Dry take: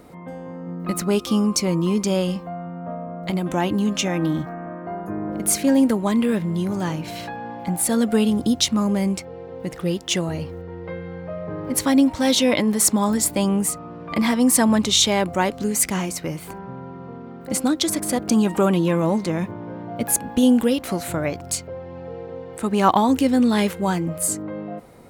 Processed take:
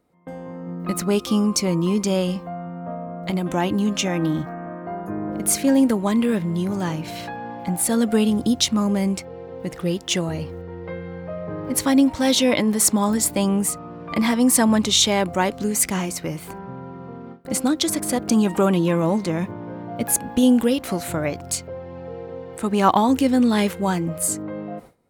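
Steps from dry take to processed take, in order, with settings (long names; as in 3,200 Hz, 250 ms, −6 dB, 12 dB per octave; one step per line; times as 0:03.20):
noise gate with hold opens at −29 dBFS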